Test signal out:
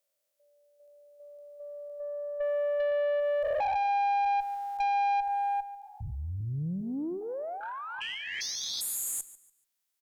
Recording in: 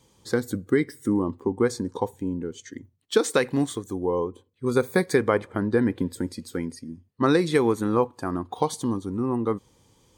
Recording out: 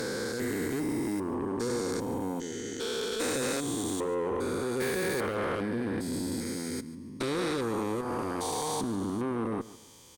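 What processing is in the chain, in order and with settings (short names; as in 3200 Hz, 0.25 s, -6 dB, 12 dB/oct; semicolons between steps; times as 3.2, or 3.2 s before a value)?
stepped spectrum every 0.4 s; compressor 6:1, threshold -28 dBFS; tilt +2 dB/oct; tube stage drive 33 dB, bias 0.2; on a send: feedback echo 0.144 s, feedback 28%, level -17.5 dB; on the sum: gain +7.5 dB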